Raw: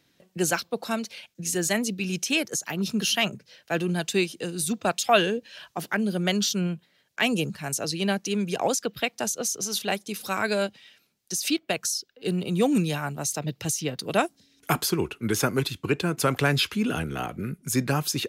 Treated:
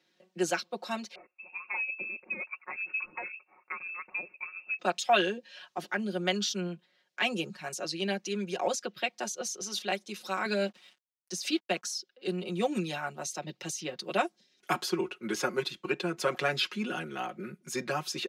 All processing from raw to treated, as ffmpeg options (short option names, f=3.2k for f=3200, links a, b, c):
-filter_complex "[0:a]asettb=1/sr,asplit=3[a][b][c];[a]atrim=end=1.154[d];[b]atrim=start=1.15:end=4.79,asetpts=PTS-STARTPTS,afade=t=in:d=0.004:c=qsin,afade=t=out:st=3.636:d=0.004:c=qsin,acompressor=threshold=-26dB:ratio=6:attack=3.2:release=140:knee=1:detection=peak,lowpass=f=2.4k:t=q:w=0.5098,lowpass=f=2.4k:t=q:w=0.6013,lowpass=f=2.4k:t=q:w=0.9,lowpass=f=2.4k:t=q:w=2.563,afreqshift=-2800[e];[c]atrim=start=4.786[f];[d][e]acrossfade=d=0.004:c1=hsin:c2=qsin[g];[g][f]acrossfade=d=0.004:c1=qsin:c2=hsin,asettb=1/sr,asplit=3[h][i][j];[h]atrim=end=10.454[k];[i]atrim=start=10.45:end=11.95,asetpts=PTS-STARTPTS,afade=t=in:d=0.004:c=qsin,afade=t=out:st=1.496:d=0.004:c=qsin,highpass=f=180:t=q:w=1.8,acrusher=bits=7:mix=0:aa=0.5[l];[j]atrim=start=11.946[m];[k][l]acrossfade=d=0.004:c1=hsin:c2=qsin[n];[n][m]acrossfade=d=0.004:c1=qsin:c2=hsin,acrossover=split=220 6700:gain=0.1 1 0.2[o][p][q];[o][p][q]amix=inputs=3:normalize=0,aecho=1:1:5.5:0.84,volume=-6.5dB"